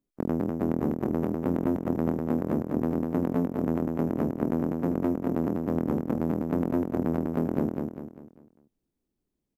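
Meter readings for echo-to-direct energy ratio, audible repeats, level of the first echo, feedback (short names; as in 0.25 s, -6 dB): -3.0 dB, 5, -4.0 dB, 41%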